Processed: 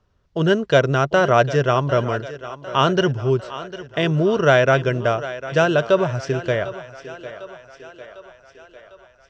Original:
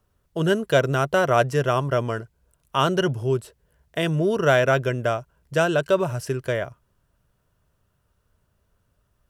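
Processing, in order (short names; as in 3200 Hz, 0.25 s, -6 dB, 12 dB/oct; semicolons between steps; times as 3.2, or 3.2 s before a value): steep low-pass 6200 Hz 36 dB/oct; on a send: thinning echo 0.751 s, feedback 60%, high-pass 250 Hz, level -14 dB; on the sum: gain +3.5 dB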